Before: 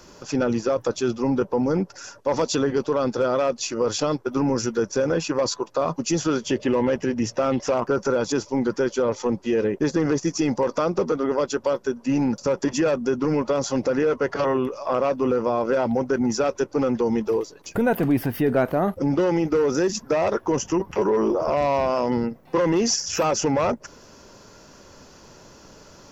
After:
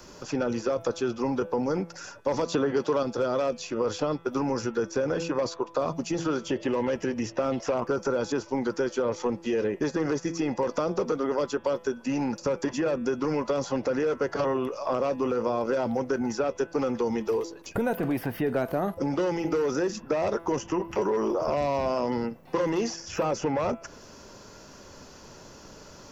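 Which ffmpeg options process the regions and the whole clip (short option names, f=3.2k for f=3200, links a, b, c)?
-filter_complex "[0:a]asettb=1/sr,asplit=3[a][b][c];[a]atrim=end=2.524[d];[b]atrim=start=2.52:end=3.03,asetpts=PTS-STARTPTS,afade=t=in:d=0.004:c=qsin,afade=t=out:st=0.506:d=0.004:c=qsin,highpass=94,highshelf=f=8.1k:g=-5.5,acontrast=72[e];[c]atrim=start=3.026[f];[d][e]acrossfade=d=0.004:c1=hsin:c2=qsin[g];[g][f]acrossfade=d=0.004:c1=qsin:c2=hsin,bandreject=f=167.2:t=h:w=4,bandreject=f=334.4:t=h:w=4,bandreject=f=501.6:t=h:w=4,bandreject=f=668.8:t=h:w=4,bandreject=f=836:t=h:w=4,bandreject=f=1.0032k:t=h:w=4,bandreject=f=1.1704k:t=h:w=4,bandreject=f=1.3376k:t=h:w=4,bandreject=f=1.5048k:t=h:w=4,bandreject=f=1.672k:t=h:w=4,bandreject=f=1.8392k:t=h:w=4,bandreject=f=2.0064k:t=h:w=4,bandreject=f=2.1736k:t=h:w=4,bandreject=f=2.3408k:t=h:w=4,bandreject=f=2.508k:t=h:w=4,bandreject=f=2.6752k:t=h:w=4,bandreject=f=2.8424k:t=h:w=4,bandreject=f=3.0096k:t=h:w=4,bandreject=f=3.1768k:t=h:w=4,bandreject=f=3.344k:t=h:w=4,bandreject=f=3.5112k:t=h:w=4,bandreject=f=3.6784k:t=h:w=4,acrossover=split=480|1300|3600[h][i][j][k];[h]acompressor=threshold=-29dB:ratio=4[l];[i]acompressor=threshold=-29dB:ratio=4[m];[j]acompressor=threshold=-42dB:ratio=4[n];[k]acompressor=threshold=-45dB:ratio=4[o];[l][m][n][o]amix=inputs=4:normalize=0"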